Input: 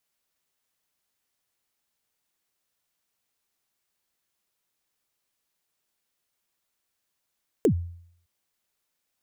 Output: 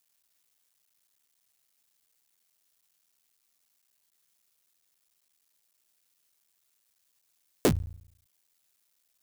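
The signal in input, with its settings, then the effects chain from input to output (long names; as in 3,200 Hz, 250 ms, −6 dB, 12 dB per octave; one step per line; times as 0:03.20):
synth kick length 0.61 s, from 500 Hz, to 86 Hz, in 87 ms, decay 0.64 s, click on, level −14 dB
sub-harmonics by changed cycles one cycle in 3, muted
high-shelf EQ 2,900 Hz +9.5 dB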